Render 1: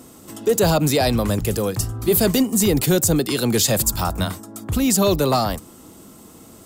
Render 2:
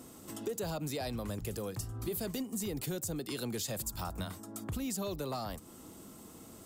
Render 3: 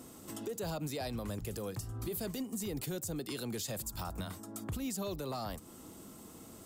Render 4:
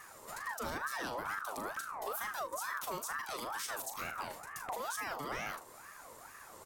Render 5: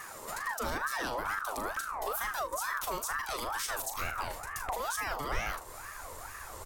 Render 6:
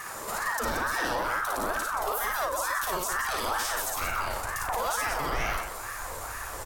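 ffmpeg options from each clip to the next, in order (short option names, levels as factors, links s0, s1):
-af "acompressor=threshold=0.0355:ratio=4,volume=0.422"
-af "alimiter=level_in=1.88:limit=0.0631:level=0:latency=1:release=95,volume=0.531"
-af "aecho=1:1:39|76:0.398|0.133,aeval=exprs='val(0)*sin(2*PI*1100*n/s+1100*0.35/2.2*sin(2*PI*2.2*n/s))':c=same,volume=1.12"
-filter_complex "[0:a]asplit=2[s0][s1];[s1]acompressor=threshold=0.00398:ratio=6,volume=0.891[s2];[s0][s2]amix=inputs=2:normalize=0,asubboost=boost=10:cutoff=62,volume=1.41"
-filter_complex "[0:a]alimiter=level_in=1.33:limit=0.0631:level=0:latency=1,volume=0.75,asplit=2[s0][s1];[s1]aecho=0:1:55.39|177.8:0.794|0.447[s2];[s0][s2]amix=inputs=2:normalize=0,volume=1.78"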